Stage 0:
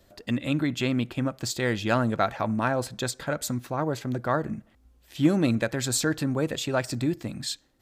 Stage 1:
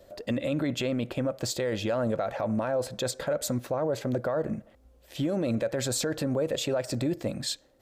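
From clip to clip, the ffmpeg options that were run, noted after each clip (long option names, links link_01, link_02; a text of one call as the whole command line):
ffmpeg -i in.wav -af "equalizer=frequency=550:width_type=o:width=0.7:gain=13.5,acompressor=threshold=-19dB:ratio=6,alimiter=limit=-20.5dB:level=0:latency=1:release=12" out.wav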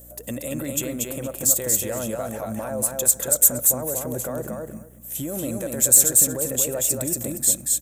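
ffmpeg -i in.wav -filter_complex "[0:a]asplit=2[link_01][link_02];[link_02]aecho=0:1:234|468|702:0.708|0.113|0.0181[link_03];[link_01][link_03]amix=inputs=2:normalize=0,aeval=exprs='val(0)+0.00562*(sin(2*PI*60*n/s)+sin(2*PI*2*60*n/s)/2+sin(2*PI*3*60*n/s)/3+sin(2*PI*4*60*n/s)/4+sin(2*PI*5*60*n/s)/5)':channel_layout=same,aexciter=amount=11:drive=9.3:freq=7000,volume=-2.5dB" out.wav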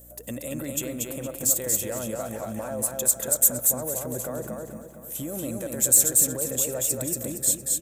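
ffmpeg -i in.wav -filter_complex "[0:a]asplit=2[link_01][link_02];[link_02]adelay=462,lowpass=frequency=4700:poles=1,volume=-13dB,asplit=2[link_03][link_04];[link_04]adelay=462,lowpass=frequency=4700:poles=1,volume=0.51,asplit=2[link_05][link_06];[link_06]adelay=462,lowpass=frequency=4700:poles=1,volume=0.51,asplit=2[link_07][link_08];[link_08]adelay=462,lowpass=frequency=4700:poles=1,volume=0.51,asplit=2[link_09][link_10];[link_10]adelay=462,lowpass=frequency=4700:poles=1,volume=0.51[link_11];[link_01][link_03][link_05][link_07][link_09][link_11]amix=inputs=6:normalize=0,volume=-3.5dB" out.wav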